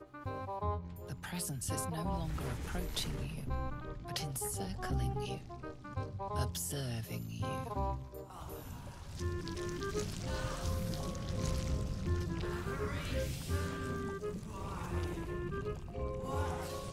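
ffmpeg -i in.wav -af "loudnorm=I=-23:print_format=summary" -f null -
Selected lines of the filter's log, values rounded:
Input Integrated:    -39.5 LUFS
Input True Peak:     -21.0 dBTP
Input LRA:             2.0 LU
Input Threshold:     -49.5 LUFS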